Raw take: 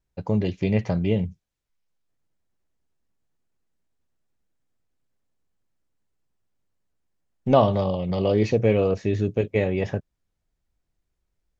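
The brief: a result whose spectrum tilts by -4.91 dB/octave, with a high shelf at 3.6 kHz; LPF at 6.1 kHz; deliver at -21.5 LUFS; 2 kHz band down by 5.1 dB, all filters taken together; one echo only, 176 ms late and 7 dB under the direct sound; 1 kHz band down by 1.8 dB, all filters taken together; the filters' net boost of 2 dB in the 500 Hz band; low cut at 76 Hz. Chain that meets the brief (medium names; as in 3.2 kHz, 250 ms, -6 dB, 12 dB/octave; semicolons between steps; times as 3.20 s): high-pass 76 Hz; low-pass 6.1 kHz; peaking EQ 500 Hz +3.5 dB; peaking EQ 1 kHz -3.5 dB; peaking EQ 2 kHz -8.5 dB; treble shelf 3.6 kHz +7.5 dB; delay 176 ms -7 dB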